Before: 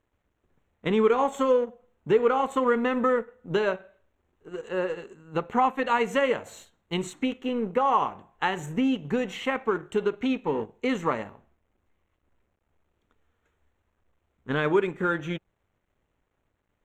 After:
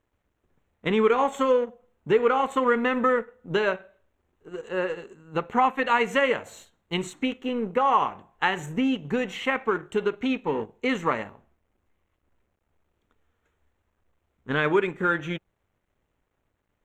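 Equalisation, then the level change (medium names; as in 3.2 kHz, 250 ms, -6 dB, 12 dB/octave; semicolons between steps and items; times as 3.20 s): dynamic bell 2.1 kHz, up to +5 dB, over -38 dBFS, Q 0.83; 0.0 dB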